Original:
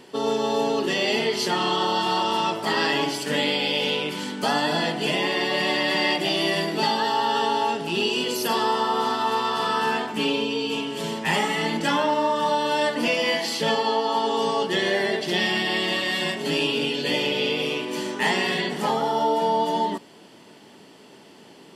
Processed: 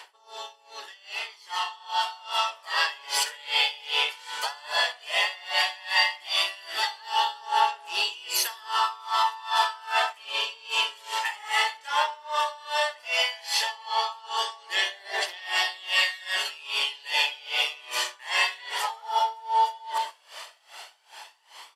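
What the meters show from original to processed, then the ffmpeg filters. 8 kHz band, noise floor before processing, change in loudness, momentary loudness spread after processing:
+1.0 dB, -48 dBFS, -3.5 dB, 9 LU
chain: -filter_complex "[0:a]asplit=2[s0][s1];[s1]asoftclip=type=tanh:threshold=0.0447,volume=0.316[s2];[s0][s2]amix=inputs=2:normalize=0,aecho=1:1:132|264:0.266|0.0399,areverse,acompressor=threshold=0.0251:ratio=8,areverse,highpass=f=800:w=0.5412,highpass=f=800:w=1.3066,aphaser=in_gain=1:out_gain=1:delay=2.4:decay=0.37:speed=0.13:type=triangular,dynaudnorm=f=380:g=11:m=2.99,aeval=exprs='val(0)*pow(10,-25*(0.5-0.5*cos(2*PI*2.5*n/s))/20)':c=same,volume=2"

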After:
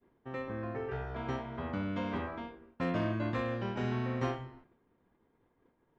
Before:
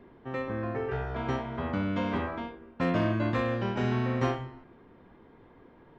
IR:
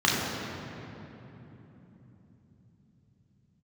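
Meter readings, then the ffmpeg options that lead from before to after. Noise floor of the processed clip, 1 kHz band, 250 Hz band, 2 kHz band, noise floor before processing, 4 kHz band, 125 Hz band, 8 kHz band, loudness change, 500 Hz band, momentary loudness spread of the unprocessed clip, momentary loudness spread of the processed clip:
-75 dBFS, -5.5 dB, -5.5 dB, -5.5 dB, -56 dBFS, -5.5 dB, -5.5 dB, no reading, -5.5 dB, -5.5 dB, 9 LU, 9 LU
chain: -af "agate=range=0.0224:threshold=0.00501:ratio=3:detection=peak,volume=0.531"

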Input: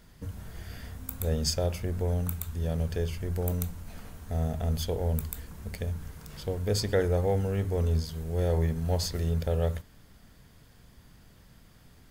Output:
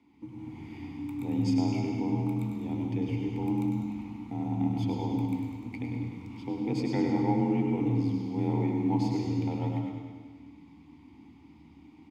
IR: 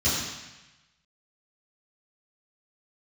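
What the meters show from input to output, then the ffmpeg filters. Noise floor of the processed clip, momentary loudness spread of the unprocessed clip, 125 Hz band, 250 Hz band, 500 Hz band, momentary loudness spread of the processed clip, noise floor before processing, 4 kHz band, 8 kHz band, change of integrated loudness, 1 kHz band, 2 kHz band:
-54 dBFS, 15 LU, -3.0 dB, +9.0 dB, -6.0 dB, 14 LU, -56 dBFS, -10.0 dB, under -15 dB, 0.0 dB, +4.0 dB, -2.5 dB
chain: -filter_complex "[0:a]afreqshift=33,asplit=3[s0][s1][s2];[s0]bandpass=f=300:t=q:w=8,volume=1[s3];[s1]bandpass=f=870:t=q:w=8,volume=0.501[s4];[s2]bandpass=f=2240:t=q:w=8,volume=0.355[s5];[s3][s4][s5]amix=inputs=3:normalize=0,asplit=2[s6][s7];[s7]aecho=0:1:100|200|300|400|500|600|700|800:0.422|0.253|0.152|0.0911|0.0547|0.0328|0.0197|0.0118[s8];[s6][s8]amix=inputs=2:normalize=0,dynaudnorm=f=260:g=3:m=1.78,bandreject=f=50:t=h:w=6,bandreject=f=100:t=h:w=6,bandreject=f=150:t=h:w=6,bandreject=f=200:t=h:w=6,asplit=2[s9][s10];[1:a]atrim=start_sample=2205,adelay=105[s11];[s10][s11]afir=irnorm=-1:irlink=0,volume=0.141[s12];[s9][s12]amix=inputs=2:normalize=0,volume=2.37"

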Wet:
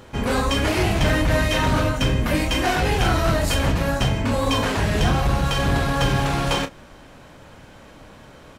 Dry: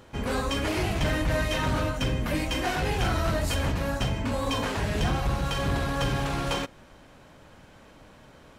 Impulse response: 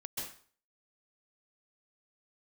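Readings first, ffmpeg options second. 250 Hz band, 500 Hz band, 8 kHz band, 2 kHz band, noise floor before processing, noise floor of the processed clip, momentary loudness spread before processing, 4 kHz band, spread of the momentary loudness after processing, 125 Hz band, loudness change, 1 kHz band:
+7.0 dB, +6.5 dB, +7.0 dB, +7.0 dB, -52 dBFS, -45 dBFS, 2 LU, +7.0 dB, 2 LU, +7.0 dB, +7.0 dB, +7.0 dB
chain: -filter_complex "[0:a]asplit=2[s0][s1];[s1]adelay=30,volume=0.299[s2];[s0][s2]amix=inputs=2:normalize=0,volume=2.11"

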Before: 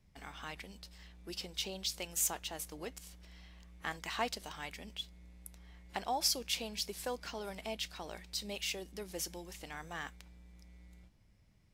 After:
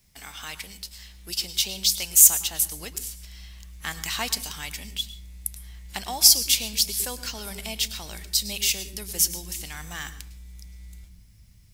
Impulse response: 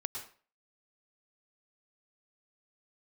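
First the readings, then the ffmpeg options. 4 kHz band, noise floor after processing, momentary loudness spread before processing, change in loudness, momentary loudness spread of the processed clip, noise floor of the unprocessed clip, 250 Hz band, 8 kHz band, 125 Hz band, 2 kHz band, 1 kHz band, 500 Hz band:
+14.5 dB, -51 dBFS, 21 LU, +17.0 dB, 21 LU, -66 dBFS, +5.5 dB, +19.0 dB, +11.0 dB, +8.5 dB, +2.5 dB, +0.5 dB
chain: -filter_complex "[0:a]crystalizer=i=7.5:c=0,asplit=2[s0][s1];[s1]asubboost=boost=8.5:cutoff=230[s2];[1:a]atrim=start_sample=2205,lowshelf=f=430:g=3.5[s3];[s2][s3]afir=irnorm=-1:irlink=0,volume=0.473[s4];[s0][s4]amix=inputs=2:normalize=0,volume=0.75"

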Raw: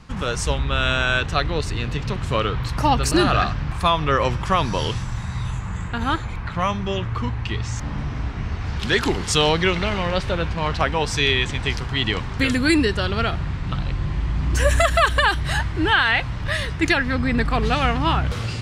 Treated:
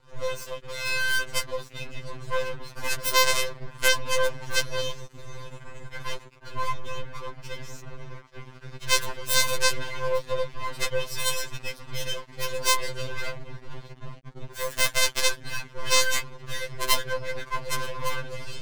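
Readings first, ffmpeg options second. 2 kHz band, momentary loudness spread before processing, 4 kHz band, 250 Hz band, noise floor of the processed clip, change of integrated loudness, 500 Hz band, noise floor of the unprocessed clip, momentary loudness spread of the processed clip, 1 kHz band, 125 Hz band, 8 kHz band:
-6.0 dB, 10 LU, -3.5 dB, -22.5 dB, -48 dBFS, -6.0 dB, -6.5 dB, -29 dBFS, 21 LU, -9.5 dB, -17.0 dB, +3.5 dB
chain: -af "afftfilt=real='hypot(re,im)*cos(PI*b)':imag='0':win_size=1024:overlap=0.75,aeval=exprs='0.75*(cos(1*acos(clip(val(0)/0.75,-1,1)))-cos(1*PI/2))+0.00841*(cos(6*acos(clip(val(0)/0.75,-1,1)))-cos(6*PI/2))+0.376*(cos(7*acos(clip(val(0)/0.75,-1,1)))-cos(7*PI/2))+0.299*(cos(8*acos(clip(val(0)/0.75,-1,1)))-cos(8*PI/2))':c=same,aeval=exprs='max(val(0),0)':c=same,afftfilt=real='re*2.45*eq(mod(b,6),0)':imag='im*2.45*eq(mod(b,6),0)':win_size=2048:overlap=0.75,volume=1.26"

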